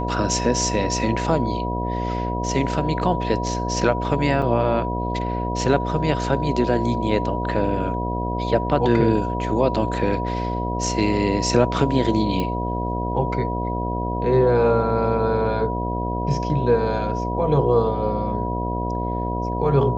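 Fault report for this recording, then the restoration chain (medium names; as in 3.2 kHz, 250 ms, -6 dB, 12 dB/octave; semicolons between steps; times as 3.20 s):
buzz 60 Hz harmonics 12 -26 dBFS
whine 970 Hz -27 dBFS
4.42 s: dropout 4.5 ms
12.40 s: pop -13 dBFS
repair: de-click; band-stop 970 Hz, Q 30; de-hum 60 Hz, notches 12; interpolate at 4.42 s, 4.5 ms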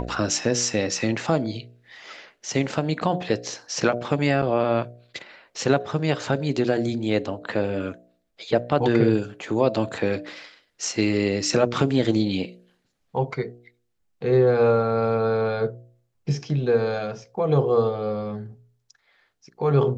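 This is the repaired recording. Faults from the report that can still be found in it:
nothing left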